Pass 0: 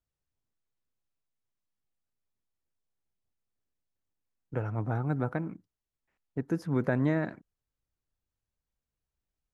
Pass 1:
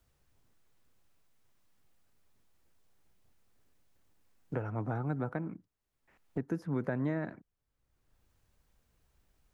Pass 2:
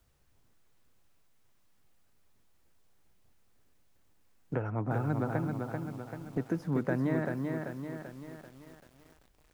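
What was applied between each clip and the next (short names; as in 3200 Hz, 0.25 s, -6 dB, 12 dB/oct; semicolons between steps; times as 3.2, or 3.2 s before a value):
three-band squash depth 70%; gain -4 dB
lo-fi delay 0.388 s, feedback 55%, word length 10-bit, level -4 dB; gain +2.5 dB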